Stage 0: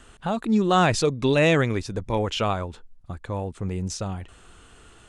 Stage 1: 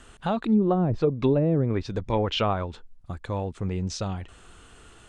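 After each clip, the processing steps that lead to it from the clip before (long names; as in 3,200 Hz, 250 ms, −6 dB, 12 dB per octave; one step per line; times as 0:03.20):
treble cut that deepens with the level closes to 380 Hz, closed at −15 dBFS
dynamic equaliser 4,000 Hz, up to +5 dB, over −52 dBFS, Q 1.6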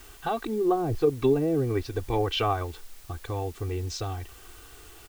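comb filter 2.6 ms, depth 100%
in parallel at −11 dB: bit-depth reduction 6 bits, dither triangular
on the sum: level −6 dB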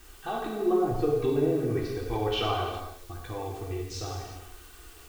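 reverb whose tail is shaped and stops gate 430 ms falling, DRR −3 dB
level −6 dB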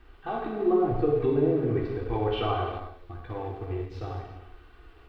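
in parallel at −9.5 dB: centre clipping without the shift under −32.5 dBFS
on the sum: high-frequency loss of the air 420 metres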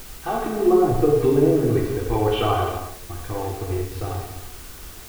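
background noise brown −49 dBFS
in parallel at −11 dB: bit-depth reduction 6 bits, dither triangular
on the sum: level +4.5 dB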